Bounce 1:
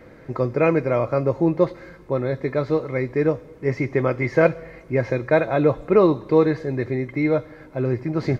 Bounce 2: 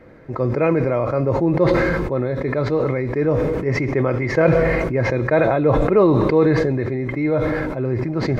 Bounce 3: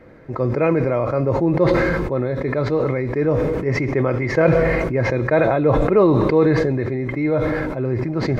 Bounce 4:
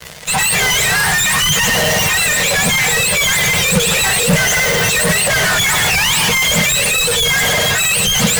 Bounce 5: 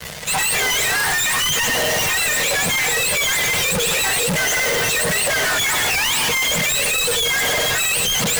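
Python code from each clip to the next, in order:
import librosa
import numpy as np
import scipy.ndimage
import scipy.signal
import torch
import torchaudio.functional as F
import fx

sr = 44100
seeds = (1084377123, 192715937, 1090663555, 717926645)

y1 = fx.high_shelf(x, sr, hz=3700.0, db=-9.0)
y1 = fx.sustainer(y1, sr, db_per_s=22.0)
y2 = y1
y3 = fx.octave_mirror(y2, sr, pivot_hz=1000.0)
y3 = fx.fuzz(y3, sr, gain_db=40.0, gate_db=-49.0)
y3 = fx.low_shelf_res(y3, sr, hz=210.0, db=7.0, q=3.0)
y4 = np.clip(10.0 ** (21.5 / 20.0) * y3, -1.0, 1.0) / 10.0 ** (21.5 / 20.0)
y4 = F.gain(torch.from_numpy(y4), 3.0).numpy()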